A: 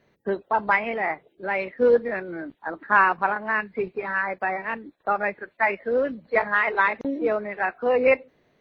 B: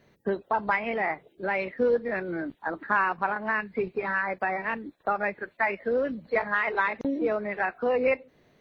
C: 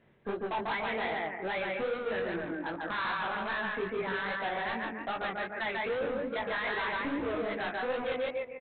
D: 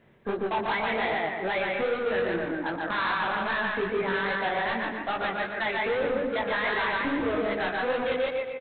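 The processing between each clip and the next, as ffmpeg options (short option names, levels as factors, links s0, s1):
-af "bass=f=250:g=3,treble=f=4000:g=4,acompressor=threshold=0.0398:ratio=2,volume=1.19"
-af "aecho=1:1:145|290|435|580|725:0.708|0.283|0.113|0.0453|0.0181,aresample=8000,asoftclip=type=hard:threshold=0.0422,aresample=44100,flanger=delay=17:depth=6.1:speed=2.5"
-af "aecho=1:1:120|240|360|480|600|720:0.316|0.171|0.0922|0.0498|0.0269|0.0145,volume=1.78"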